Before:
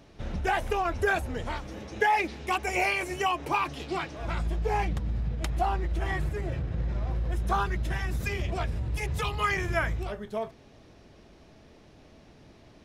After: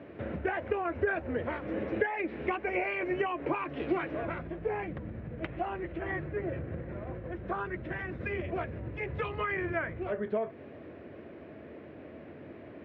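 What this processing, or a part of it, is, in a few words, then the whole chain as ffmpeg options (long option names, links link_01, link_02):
bass amplifier: -filter_complex "[0:a]acompressor=threshold=-36dB:ratio=5,highpass=75,highpass=frequency=83:width=0.5412,highpass=frequency=83:width=1.3066,equalizer=frequency=120:width_type=q:width=4:gain=-8,equalizer=frequency=180:width_type=q:width=4:gain=-6,equalizer=frequency=330:width_type=q:width=4:gain=3,equalizer=frequency=540:width_type=q:width=4:gain=4,equalizer=frequency=840:width_type=q:width=4:gain=-8,equalizer=frequency=1200:width_type=q:width=4:gain=-4,lowpass=frequency=2200:width=0.5412,lowpass=frequency=2200:width=1.3066,asettb=1/sr,asplit=3[link_01][link_02][link_03];[link_01]atrim=end=5.434[link_04];[link_02]atrim=start=5.43:end=6.01,asetpts=PTS-STARTPTS,afade=type=in:duration=0.004:curve=qsin,afade=type=out:start_time=0.576:duration=0.004:curve=qsin,equalizer=frequency=2800:width_type=o:width=0.77:gain=5.5[link_05];[link_03]atrim=start=6.006[link_06];[link_04][link_05]acrossfade=duration=0.004:curve1=hsin:curve2=qsin[link_07];[link_07][link_06]acrossfade=duration=0.004:curve1=qsin:curve2=hsin,volume=8.5dB"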